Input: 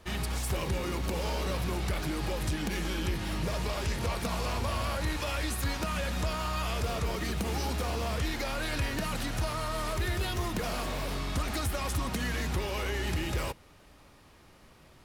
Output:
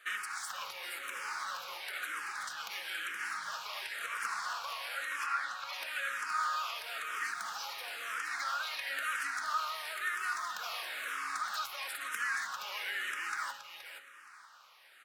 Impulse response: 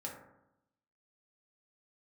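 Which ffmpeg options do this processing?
-filter_complex "[0:a]asettb=1/sr,asplit=3[a][b][c];[a]atrim=end=5.264[d];[b]atrim=start=5.26:end=5.73,asetpts=PTS-STARTPTS,afade=t=in:d=0.004:c=qsin,afade=t=out:st=0.466:d=0.004:c=qsin,lowpass=3.2k[e];[c]atrim=start=5.726[f];[d][e]acrossfade=d=0.004:c1=hsin:c2=qsin[g];[g][f]acrossfade=d=0.004:c1=qsin:c2=hsin,acompressor=threshold=-32dB:ratio=6,highpass=f=1.4k:t=q:w=3.4,aecho=1:1:472|944|1416:0.447|0.0804|0.0145,asplit=2[h][i];[1:a]atrim=start_sample=2205,lowshelf=f=430:g=11.5[j];[i][j]afir=irnorm=-1:irlink=0,volume=-11.5dB[k];[h][k]amix=inputs=2:normalize=0,asplit=2[l][m];[m]afreqshift=-1[n];[l][n]amix=inputs=2:normalize=1"

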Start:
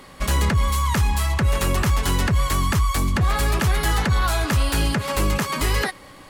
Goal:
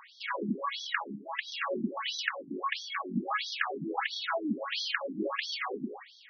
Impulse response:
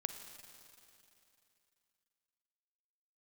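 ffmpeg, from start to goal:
-filter_complex "[1:a]atrim=start_sample=2205,atrim=end_sample=6174[a];[0:a][a]afir=irnorm=-1:irlink=0,afftfilt=real='re*between(b*sr/1024,240*pow(4600/240,0.5+0.5*sin(2*PI*1.5*pts/sr))/1.41,240*pow(4600/240,0.5+0.5*sin(2*PI*1.5*pts/sr))*1.41)':imag='im*between(b*sr/1024,240*pow(4600/240,0.5+0.5*sin(2*PI*1.5*pts/sr))/1.41,240*pow(4600/240,0.5+0.5*sin(2*PI*1.5*pts/sr))*1.41)':win_size=1024:overlap=0.75"

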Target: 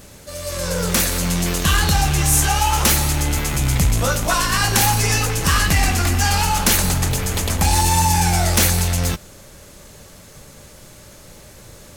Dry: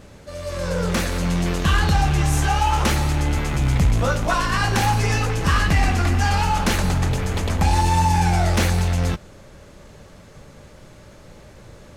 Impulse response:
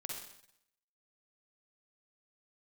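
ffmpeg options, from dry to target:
-af "aemphasis=mode=production:type=75fm,volume=1dB"

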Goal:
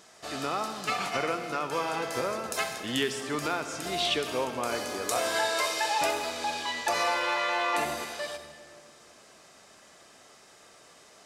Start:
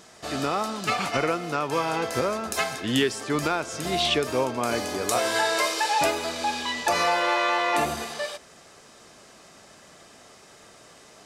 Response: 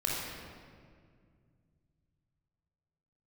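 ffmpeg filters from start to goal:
-filter_complex "[0:a]lowshelf=f=270:g=-7.5,asplit=2[a][b];[1:a]atrim=start_sample=2205,highshelf=f=9.5k:g=10.5,adelay=65[c];[b][c]afir=irnorm=-1:irlink=0,volume=-16.5dB[d];[a][d]amix=inputs=2:normalize=0,volume=-4dB"

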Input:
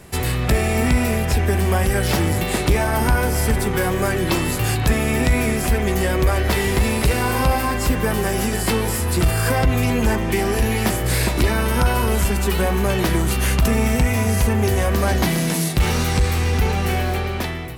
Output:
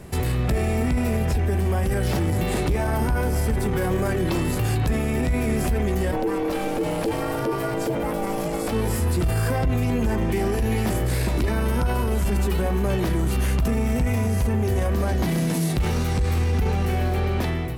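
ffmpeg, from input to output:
-filter_complex "[0:a]tiltshelf=f=820:g=4,alimiter=limit=-15.5dB:level=0:latency=1:release=34,asplit=3[a][b][c];[a]afade=t=out:st=6.11:d=0.02[d];[b]aeval=exprs='val(0)*sin(2*PI*390*n/s)':c=same,afade=t=in:st=6.11:d=0.02,afade=t=out:st=8.71:d=0.02[e];[c]afade=t=in:st=8.71:d=0.02[f];[d][e][f]amix=inputs=3:normalize=0"

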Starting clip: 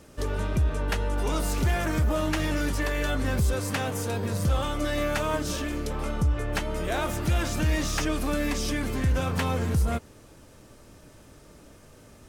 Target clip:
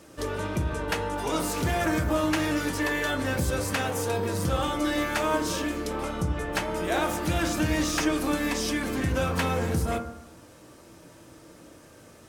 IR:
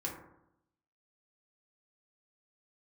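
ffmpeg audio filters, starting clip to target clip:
-filter_complex "[0:a]highpass=f=180:p=1,asplit=2[a][b];[1:a]atrim=start_sample=2205,asetrate=43218,aresample=44100[c];[b][c]afir=irnorm=-1:irlink=0,volume=-1.5dB[d];[a][d]amix=inputs=2:normalize=0,volume=-2.5dB"

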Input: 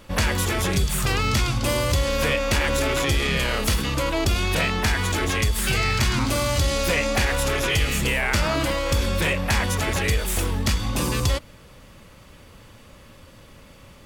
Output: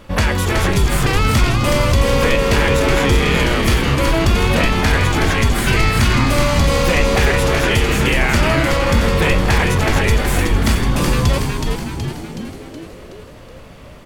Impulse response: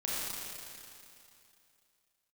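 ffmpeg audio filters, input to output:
-filter_complex "[0:a]highshelf=f=3.4k:g=-7.5,asplit=2[a][b];[b]asplit=8[c][d][e][f][g][h][i][j];[c]adelay=372,afreqshift=-96,volume=-4dB[k];[d]adelay=744,afreqshift=-192,volume=-9dB[l];[e]adelay=1116,afreqshift=-288,volume=-14.1dB[m];[f]adelay=1488,afreqshift=-384,volume=-19.1dB[n];[g]adelay=1860,afreqshift=-480,volume=-24.1dB[o];[h]adelay=2232,afreqshift=-576,volume=-29.2dB[p];[i]adelay=2604,afreqshift=-672,volume=-34.2dB[q];[j]adelay=2976,afreqshift=-768,volume=-39.3dB[r];[k][l][m][n][o][p][q][r]amix=inputs=8:normalize=0[s];[a][s]amix=inputs=2:normalize=0,volume=6.5dB"

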